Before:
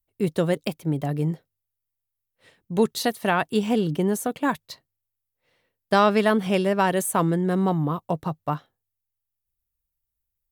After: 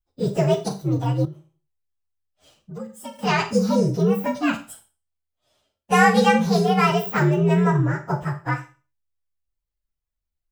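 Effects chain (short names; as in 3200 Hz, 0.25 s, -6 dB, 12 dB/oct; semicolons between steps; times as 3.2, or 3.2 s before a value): inharmonic rescaling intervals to 125%; Schroeder reverb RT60 0.33 s, combs from 28 ms, DRR 7.5 dB; 1.25–3.19 compressor 3:1, threshold -43 dBFS, peak gain reduction 20 dB; gain +5 dB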